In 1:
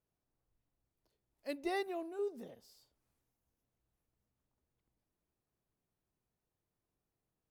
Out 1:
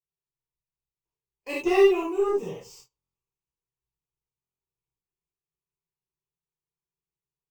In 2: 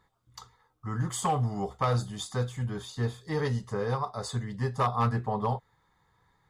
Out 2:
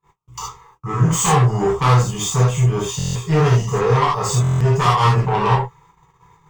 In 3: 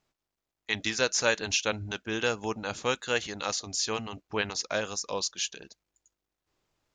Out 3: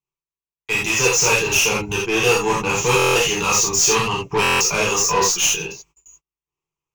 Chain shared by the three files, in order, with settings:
median filter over 3 samples; vocal rider 2 s; ripple EQ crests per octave 0.73, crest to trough 14 dB; tube stage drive 27 dB, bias 0.2; non-linear reverb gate 0.11 s flat, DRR -6.5 dB; gate -58 dBFS, range -29 dB; stuck buffer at 2.97/4.42, samples 1024, times 7; gain +8.5 dB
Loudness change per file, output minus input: +17.0, +14.0, +13.5 LU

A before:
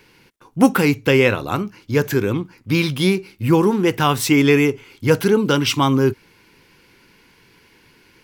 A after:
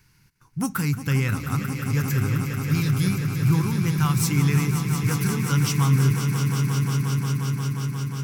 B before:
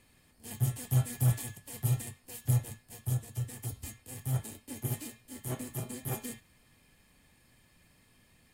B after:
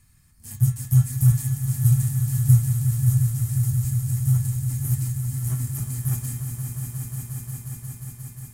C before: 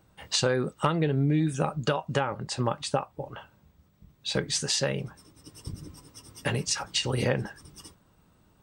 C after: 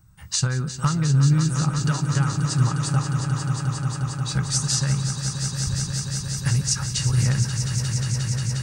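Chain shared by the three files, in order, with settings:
EQ curve 140 Hz 0 dB, 230 Hz -13 dB, 530 Hz -25 dB, 1300 Hz -9 dB, 3200 Hz -17 dB, 6000 Hz -4 dB; on a send: swelling echo 0.178 s, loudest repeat 5, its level -9.5 dB; on the sum: match loudness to -23 LUFS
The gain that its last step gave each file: +1.5, +10.5, +10.0 dB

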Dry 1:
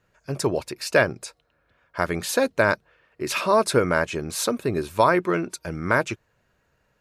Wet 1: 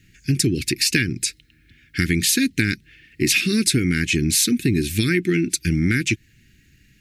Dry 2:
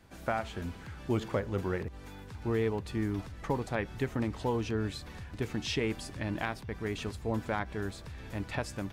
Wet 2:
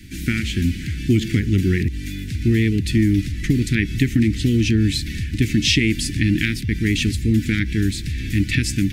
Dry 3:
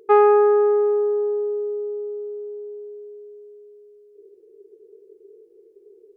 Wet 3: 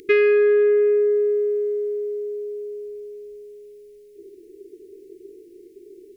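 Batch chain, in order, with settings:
elliptic band-stop 310–2000 Hz, stop band 50 dB; compressor, threshold -32 dBFS; match loudness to -20 LUFS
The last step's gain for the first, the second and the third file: +16.5, +20.0, +18.5 dB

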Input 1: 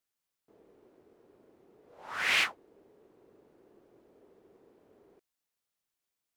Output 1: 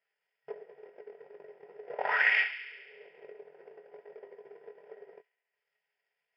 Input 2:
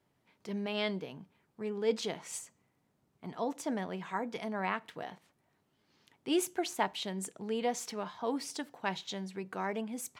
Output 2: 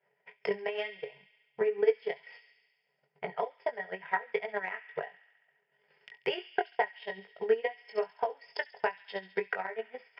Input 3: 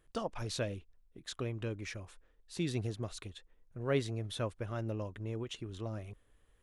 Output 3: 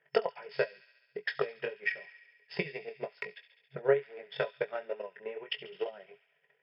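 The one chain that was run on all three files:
bell 250 Hz -11 dB 1.1 oct; transient shaper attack +7 dB, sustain -10 dB; fixed phaser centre 1100 Hz, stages 6; compressor 3:1, threshold -43 dBFS; chorus 2.2 Hz, delay 19.5 ms, depth 2.9 ms; FFT band-pass 130–5300 Hz; on a send: thin delay 69 ms, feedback 71%, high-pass 2400 Hz, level -6 dB; on the sum: transient shaper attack +11 dB, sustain -2 dB; low shelf 170 Hz -10 dB; small resonant body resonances 420/1000/1900 Hz, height 14 dB, ringing for 85 ms; normalise peaks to -12 dBFS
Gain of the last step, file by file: +13.0, +6.0, +8.5 dB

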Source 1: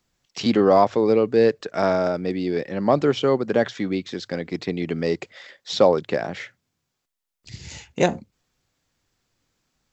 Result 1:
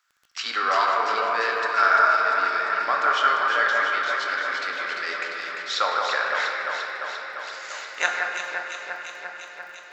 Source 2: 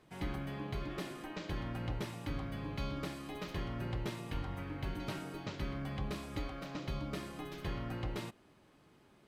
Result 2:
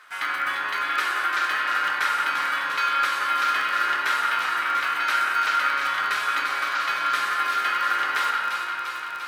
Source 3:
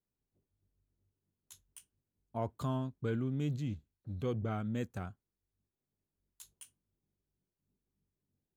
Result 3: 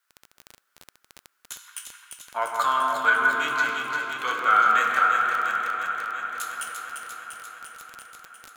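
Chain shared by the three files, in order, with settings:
resonant high-pass 1400 Hz, resonance Q 4.9; echo with dull and thin repeats by turns 0.173 s, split 2100 Hz, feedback 85%, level -4 dB; shoebox room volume 190 m³, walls hard, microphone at 0.41 m; crackle 19/s -41 dBFS; match loudness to -23 LUFS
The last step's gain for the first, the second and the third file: -1.5, +14.0, +16.0 dB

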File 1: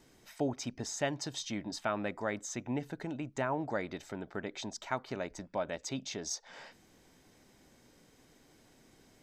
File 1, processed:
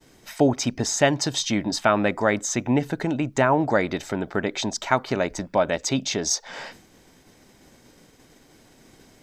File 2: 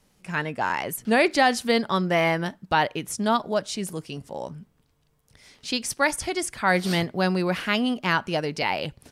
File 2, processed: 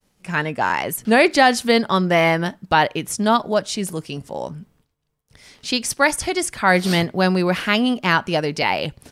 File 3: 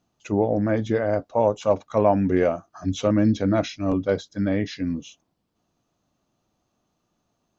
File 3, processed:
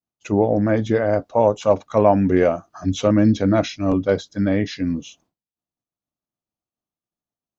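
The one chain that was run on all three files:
expander -57 dBFS; normalise peaks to -3 dBFS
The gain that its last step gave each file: +14.0, +5.5, +4.0 dB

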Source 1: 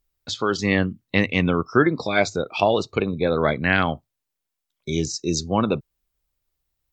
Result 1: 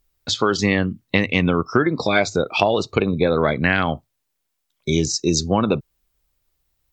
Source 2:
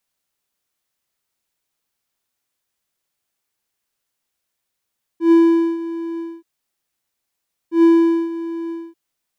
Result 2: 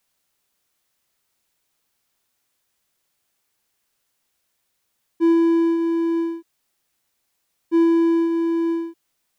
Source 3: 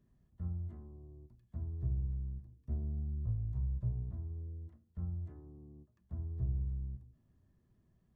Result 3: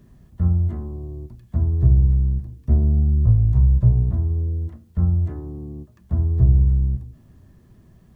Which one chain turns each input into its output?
compressor 6:1, threshold -20 dBFS; match loudness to -20 LUFS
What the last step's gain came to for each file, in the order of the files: +6.5, +5.5, +20.5 dB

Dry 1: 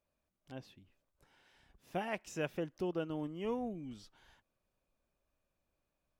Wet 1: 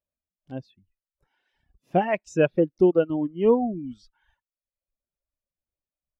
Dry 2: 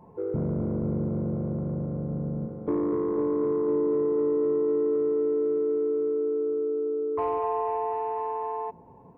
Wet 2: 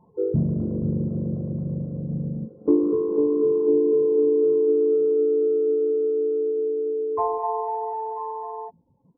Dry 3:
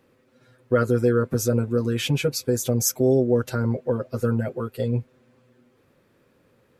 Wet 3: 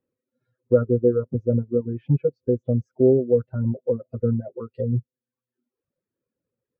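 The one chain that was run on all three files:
reverb removal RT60 1.1 s; treble ducked by the level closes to 950 Hz, closed at -24 dBFS; spectral expander 1.5:1; match loudness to -23 LUFS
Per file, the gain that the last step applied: +16.0, +10.5, +4.0 dB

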